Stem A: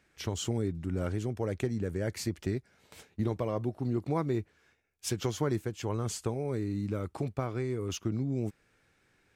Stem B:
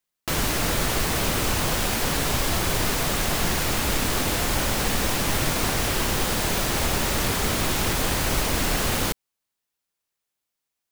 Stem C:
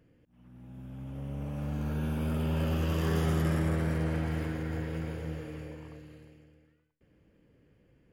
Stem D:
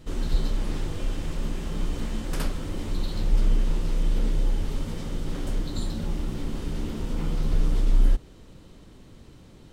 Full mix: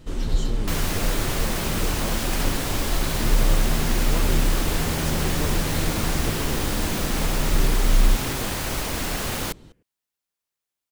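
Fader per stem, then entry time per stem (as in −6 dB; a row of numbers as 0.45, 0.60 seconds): −3.5, −3.5, −1.5, +1.5 decibels; 0.00, 0.40, 1.70, 0.00 seconds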